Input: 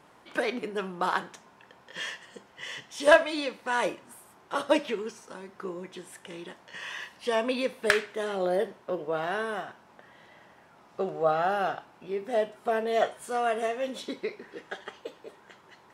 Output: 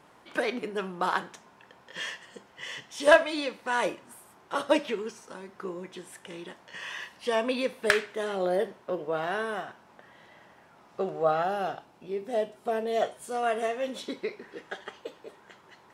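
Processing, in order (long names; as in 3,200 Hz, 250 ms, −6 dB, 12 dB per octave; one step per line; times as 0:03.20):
0:11.43–0:13.43: parametric band 1,500 Hz −6 dB 1.7 octaves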